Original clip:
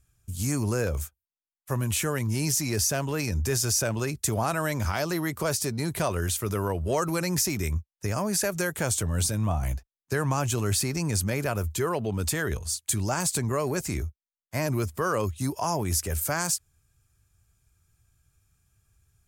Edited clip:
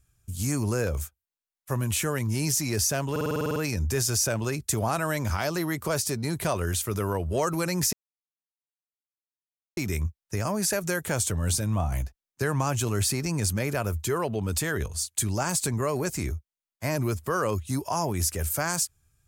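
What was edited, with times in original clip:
0:03.11: stutter 0.05 s, 10 plays
0:07.48: splice in silence 1.84 s

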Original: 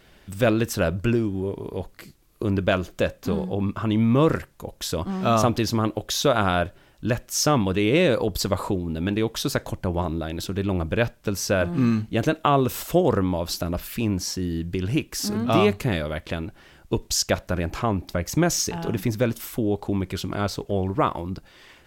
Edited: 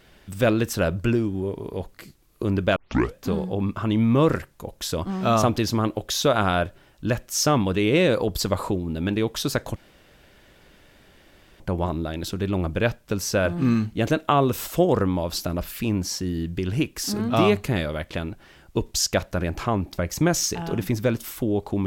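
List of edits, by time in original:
0:02.76: tape start 0.40 s
0:09.76: splice in room tone 1.84 s

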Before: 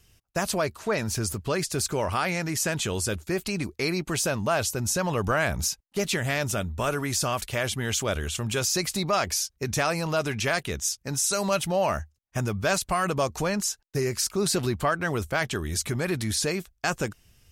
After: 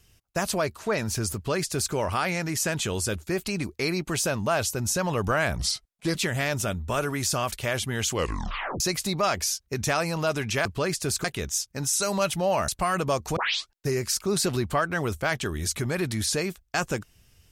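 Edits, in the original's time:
0:01.35–0:01.94: duplicate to 0:10.55
0:05.58–0:06.05: play speed 82%
0:08.00: tape stop 0.70 s
0:11.99–0:12.78: remove
0:13.46: tape start 0.35 s

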